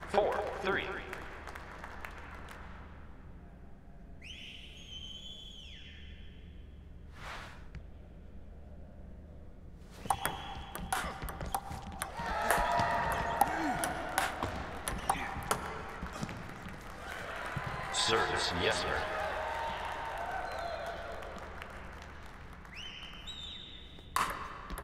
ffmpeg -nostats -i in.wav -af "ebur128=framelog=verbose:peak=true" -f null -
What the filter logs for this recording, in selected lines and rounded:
Integrated loudness:
  I:         -36.3 LUFS
  Threshold: -47.7 LUFS
Loudness range:
  LRA:        15.5 LU
  Threshold: -57.7 LUFS
  LRA low:   -48.8 LUFS
  LRA high:  -33.3 LUFS
True peak:
  Peak:      -11.7 dBFS